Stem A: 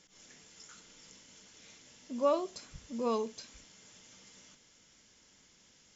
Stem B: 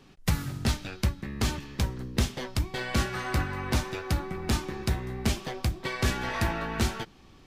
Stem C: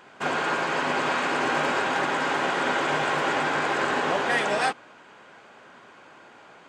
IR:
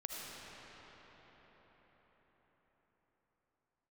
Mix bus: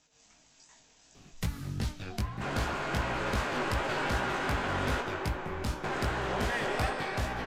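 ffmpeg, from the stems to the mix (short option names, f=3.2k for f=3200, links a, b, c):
-filter_complex "[0:a]aeval=exprs='val(0)*sin(2*PI*460*n/s)':c=same,volume=1dB[a];[1:a]acompressor=threshold=-35dB:ratio=2.5,adelay=1150,volume=1.5dB[b];[2:a]adelay=2200,volume=0dB,asplit=3[c][d][e];[c]atrim=end=5.01,asetpts=PTS-STARTPTS,afade=t=out:st=5.006:d=0.004:c=hsin[f];[d]atrim=start=5.01:end=5.84,asetpts=PTS-STARTPTS,volume=0[g];[e]atrim=start=5.84,asetpts=PTS-STARTPTS,afade=t=in:d=0.004:c=hsin[h];[f][g][h]concat=n=3:v=0:a=1,asplit=2[i][j];[j]volume=-8dB[k];[a][i]amix=inputs=2:normalize=0,asoftclip=type=tanh:threshold=-29dB,acompressor=threshold=-42dB:ratio=2.5,volume=0dB[l];[3:a]atrim=start_sample=2205[m];[k][m]afir=irnorm=-1:irlink=0[n];[b][l][n]amix=inputs=3:normalize=0,lowshelf=f=190:g=4.5,flanger=delay=16.5:depth=5.3:speed=2.6"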